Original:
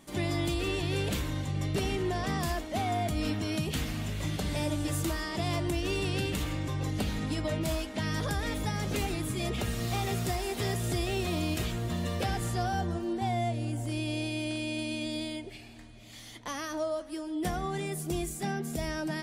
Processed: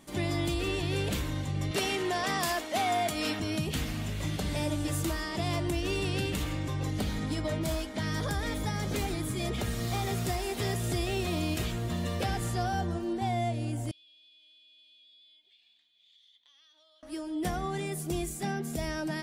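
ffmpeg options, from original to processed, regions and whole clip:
ffmpeg -i in.wav -filter_complex "[0:a]asettb=1/sr,asplit=3[link_01][link_02][link_03];[link_01]atrim=end=1.714[link_04];[link_02]atrim=start=1.71:end=3.4,asetpts=PTS-STARTPTS,afade=type=in:duration=0.004:curve=qsin,afade=type=out:start_time=1.686:duration=0.004:curve=qsin,highpass=frequency=650:poles=1,acontrast=50[link_05];[link_03]atrim=start=3.396[link_06];[link_04][link_05]acrossfade=duration=0.004:curve1=hsin:curve2=qsin[link_07];[link_07][link_06]acrossfade=duration=0.004:curve1=qsin:curve2=hsin,asettb=1/sr,asplit=3[link_08][link_09][link_10];[link_08]atrim=end=6.994[link_11];[link_09]atrim=start=6.99:end=10.18,asetpts=PTS-STARTPTS,afade=type=in:duration=0.004:curve=qsin,afade=type=out:start_time=3.186:duration=0.004:curve=qsin,asoftclip=type=hard:threshold=-24.5dB,bandreject=frequency=2700:width=10[link_12];[link_10]atrim=start=10.176[link_13];[link_11][link_12]acrossfade=duration=0.004:curve1=hsin:curve2=qsin[link_14];[link_14][link_13]acrossfade=duration=0.004:curve1=qsin:curve2=hsin,asettb=1/sr,asplit=3[link_15][link_16][link_17];[link_15]atrim=end=13.914[link_18];[link_16]atrim=start=13.91:end=17.03,asetpts=PTS-STARTPTS,afade=type=in:duration=0.004:curve=qsin,afade=type=out:start_time=3.116:duration=0.004:curve=qsin,bandpass=frequency=3500:width_type=q:width=9.4,acompressor=threshold=-59dB:ratio=5:attack=3.2:release=140:knee=1:detection=peak[link_19];[link_17]atrim=start=17.026[link_20];[link_18][link_19]acrossfade=duration=0.004:curve1=hsin:curve2=qsin[link_21];[link_21][link_20]acrossfade=duration=0.004:curve1=qsin:curve2=hsin" out.wav

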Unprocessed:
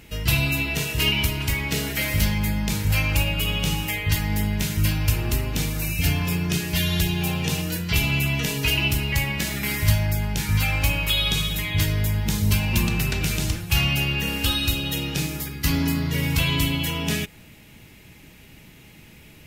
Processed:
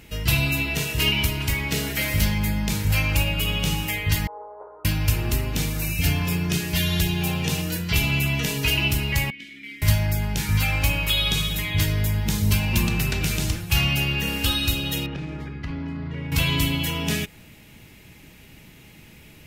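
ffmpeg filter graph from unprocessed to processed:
ffmpeg -i in.wav -filter_complex "[0:a]asettb=1/sr,asplit=3[link_01][link_02][link_03];[link_01]atrim=end=4.274[link_04];[link_02]atrim=start=4.27:end=4.85,asetpts=PTS-STARTPTS,afade=type=in:duration=0.004:curve=qsin,afade=type=out:start_time=0.576:duration=0.004:curve=qsin,asuperpass=centerf=710:order=12:qfactor=0.87,aeval=exprs='val(0)+0.000447*(sin(2*PI*60*n/s)+sin(2*PI*2*60*n/s)/2+sin(2*PI*3*60*n/s)/3+sin(2*PI*4*60*n/s)/4+sin(2*PI*5*60*n/s)/5)':channel_layout=same[link_05];[link_03]atrim=start=4.846[link_06];[link_04][link_05]acrossfade=duration=0.004:curve1=hsin:curve2=qsin[link_07];[link_07][link_06]acrossfade=duration=0.004:curve1=qsin:curve2=hsin,asettb=1/sr,asplit=3[link_08][link_09][link_10];[link_08]atrim=end=9.304[link_11];[link_09]atrim=start=9.3:end=9.82,asetpts=PTS-STARTPTS,afade=type=in:duration=0.004:curve=qsin,afade=type=out:start_time=0.516:duration=0.004:curve=qsin,asplit=3[link_12][link_13][link_14];[link_12]bandpass=frequency=270:width_type=q:width=8,volume=0dB[link_15];[link_13]bandpass=frequency=2290:width_type=q:width=8,volume=-6dB[link_16];[link_14]bandpass=frequency=3010:width_type=q:width=8,volume=-9dB[link_17];[link_15][link_16][link_17]amix=inputs=3:normalize=0,equalizer=frequency=160:width=0.39:gain=-8.5[link_18];[link_10]atrim=start=9.816[link_19];[link_11][link_18]acrossfade=duration=0.004:curve1=hsin:curve2=qsin[link_20];[link_20][link_19]acrossfade=duration=0.004:curve1=qsin:curve2=hsin,asettb=1/sr,asplit=3[link_21][link_22][link_23];[link_21]atrim=end=15.064[link_24];[link_22]atrim=start=15.06:end=16.32,asetpts=PTS-STARTPTS,afade=type=in:duration=0.004:curve=qsin,afade=type=out:start_time=1.256:duration=0.004:curve=qsin,lowpass=1900,acompressor=threshold=-27dB:ratio=6:attack=3.2:release=140:knee=1:detection=peak[link_25];[link_23]atrim=start=16.316[link_26];[link_24][link_25]acrossfade=duration=0.004:curve1=hsin:curve2=qsin[link_27];[link_27][link_26]acrossfade=duration=0.004:curve1=qsin:curve2=hsin" out.wav

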